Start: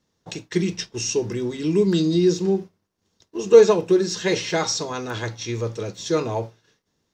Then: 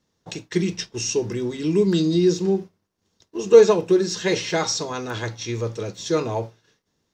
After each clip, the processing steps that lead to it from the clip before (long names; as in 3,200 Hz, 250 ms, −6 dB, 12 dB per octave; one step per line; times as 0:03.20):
no processing that can be heard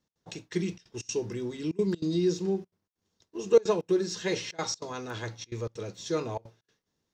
gate pattern "x.xxxxxxxx.x" 193 BPM −24 dB
level −8 dB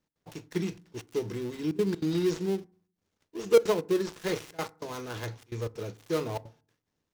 gap after every zero crossing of 0.17 ms
feedback delay network reverb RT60 0.45 s, low-frequency decay 1.45×, high-frequency decay 0.45×, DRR 17 dB